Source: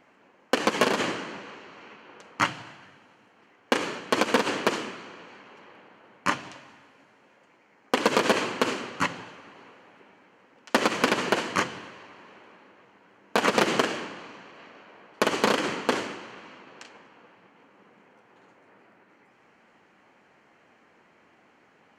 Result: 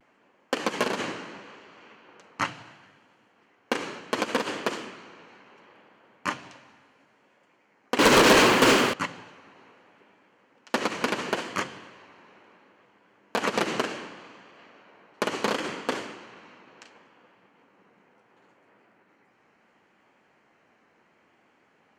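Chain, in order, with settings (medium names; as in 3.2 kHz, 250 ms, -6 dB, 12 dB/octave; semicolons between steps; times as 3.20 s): 7.99–8.94 s: waveshaping leveller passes 5; vibrato 0.71 Hz 48 cents; trim -4 dB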